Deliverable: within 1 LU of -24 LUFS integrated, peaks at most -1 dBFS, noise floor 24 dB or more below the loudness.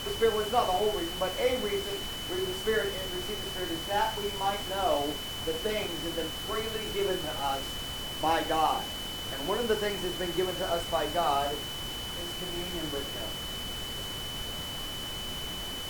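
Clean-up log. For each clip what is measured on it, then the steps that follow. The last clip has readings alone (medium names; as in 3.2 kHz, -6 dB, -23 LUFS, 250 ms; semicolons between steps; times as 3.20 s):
steady tone 3 kHz; tone level -37 dBFS; noise floor -37 dBFS; noise floor target -55 dBFS; loudness -31.0 LUFS; peak level -13.0 dBFS; loudness target -24.0 LUFS
-> band-stop 3 kHz, Q 30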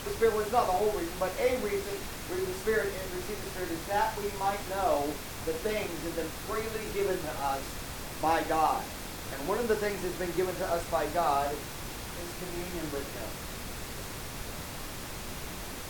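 steady tone not found; noise floor -40 dBFS; noise floor target -57 dBFS
-> noise print and reduce 17 dB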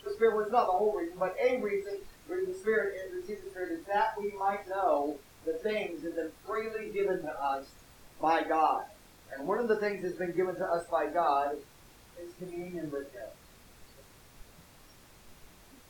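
noise floor -57 dBFS; loudness -32.0 LUFS; peak level -13.0 dBFS; loudness target -24.0 LUFS
-> trim +8 dB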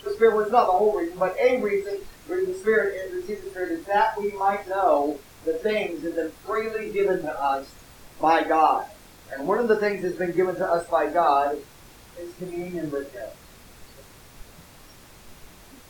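loudness -24.0 LUFS; peak level -5.0 dBFS; noise floor -49 dBFS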